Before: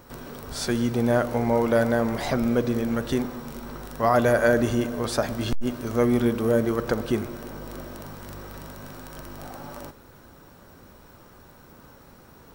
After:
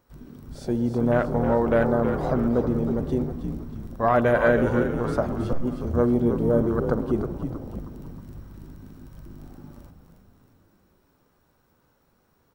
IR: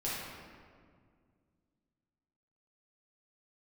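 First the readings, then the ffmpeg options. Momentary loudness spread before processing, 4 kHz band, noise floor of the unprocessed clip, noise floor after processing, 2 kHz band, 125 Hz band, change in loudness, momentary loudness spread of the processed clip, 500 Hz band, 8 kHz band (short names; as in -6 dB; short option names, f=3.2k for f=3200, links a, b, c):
19 LU, under -10 dB, -51 dBFS, -66 dBFS, -1.5 dB, +2.0 dB, +0.5 dB, 18 LU, +0.5 dB, under -15 dB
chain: -filter_complex "[0:a]afwtdn=0.0355,asplit=7[a][b][c][d][e][f][g];[b]adelay=317,afreqshift=-82,volume=-7.5dB[h];[c]adelay=634,afreqshift=-164,volume=-13dB[i];[d]adelay=951,afreqshift=-246,volume=-18.5dB[j];[e]adelay=1268,afreqshift=-328,volume=-24dB[k];[f]adelay=1585,afreqshift=-410,volume=-29.6dB[l];[g]adelay=1902,afreqshift=-492,volume=-35.1dB[m];[a][h][i][j][k][l][m]amix=inputs=7:normalize=0"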